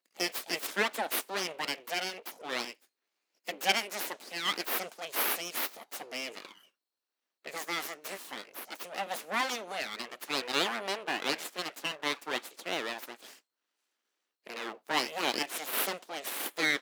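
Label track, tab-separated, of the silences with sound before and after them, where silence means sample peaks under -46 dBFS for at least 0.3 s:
2.730000	3.470000	silence
6.580000	7.450000	silence
13.360000	14.460000	silence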